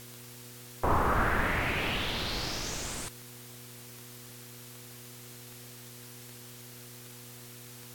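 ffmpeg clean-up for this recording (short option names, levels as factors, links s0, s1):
-af "adeclick=t=4,bandreject=f=121.4:t=h:w=4,bandreject=f=242.8:t=h:w=4,bandreject=f=364.2:t=h:w=4,bandreject=f=485.6:t=h:w=4,afwtdn=0.0035"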